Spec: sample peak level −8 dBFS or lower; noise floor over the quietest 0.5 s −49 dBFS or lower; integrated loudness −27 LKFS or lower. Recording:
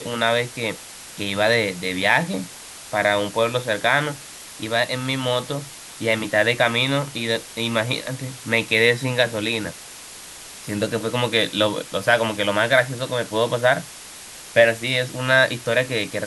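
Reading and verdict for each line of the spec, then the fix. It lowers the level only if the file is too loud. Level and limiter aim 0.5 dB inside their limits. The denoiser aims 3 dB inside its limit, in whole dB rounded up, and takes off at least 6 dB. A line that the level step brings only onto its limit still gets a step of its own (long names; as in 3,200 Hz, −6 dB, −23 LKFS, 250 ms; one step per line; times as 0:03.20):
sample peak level −2.5 dBFS: out of spec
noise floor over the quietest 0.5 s −40 dBFS: out of spec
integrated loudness −21.0 LKFS: out of spec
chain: broadband denoise 6 dB, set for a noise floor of −40 dBFS
level −6.5 dB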